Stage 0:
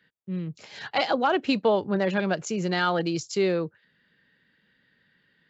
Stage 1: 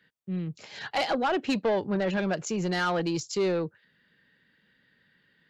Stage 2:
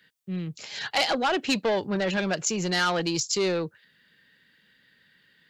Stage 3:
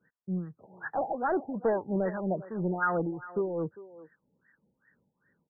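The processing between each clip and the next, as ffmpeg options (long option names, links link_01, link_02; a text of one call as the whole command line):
ffmpeg -i in.wav -af "asoftclip=type=tanh:threshold=-20dB" out.wav
ffmpeg -i in.wav -af "highshelf=frequency=2300:gain=11" out.wav
ffmpeg -i in.wav -filter_complex "[0:a]acrossover=split=820[link_01][link_02];[link_01]aeval=exprs='val(0)*(1-0.7/2+0.7/2*cos(2*PI*3*n/s))':channel_layout=same[link_03];[link_02]aeval=exprs='val(0)*(1-0.7/2-0.7/2*cos(2*PI*3*n/s))':channel_layout=same[link_04];[link_03][link_04]amix=inputs=2:normalize=0,asplit=2[link_05][link_06];[link_06]adelay=400,highpass=300,lowpass=3400,asoftclip=type=hard:threshold=-21.5dB,volume=-16dB[link_07];[link_05][link_07]amix=inputs=2:normalize=0,afftfilt=real='re*lt(b*sr/1024,900*pow(2000/900,0.5+0.5*sin(2*PI*2.5*pts/sr)))':imag='im*lt(b*sr/1024,900*pow(2000/900,0.5+0.5*sin(2*PI*2.5*pts/sr)))':win_size=1024:overlap=0.75" out.wav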